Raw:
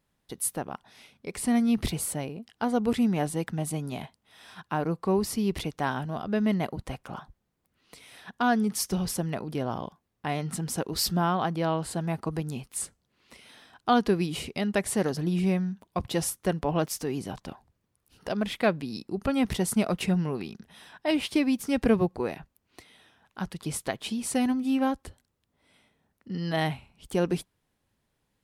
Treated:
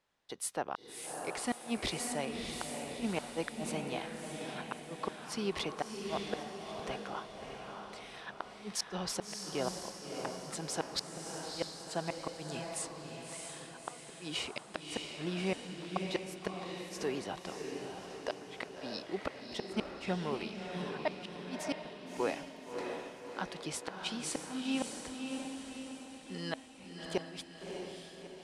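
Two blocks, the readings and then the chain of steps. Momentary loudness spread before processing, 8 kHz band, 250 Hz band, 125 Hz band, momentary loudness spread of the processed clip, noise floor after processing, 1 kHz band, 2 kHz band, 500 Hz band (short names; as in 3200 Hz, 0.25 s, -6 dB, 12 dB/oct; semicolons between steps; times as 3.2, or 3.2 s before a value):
14 LU, -7.0 dB, -13.0 dB, -14.0 dB, 9 LU, -51 dBFS, -9.0 dB, -6.5 dB, -8.0 dB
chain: three-band isolator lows -14 dB, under 380 Hz, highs -23 dB, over 8000 Hz; flipped gate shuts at -21 dBFS, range -34 dB; diffused feedback echo 0.628 s, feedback 54%, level -4 dB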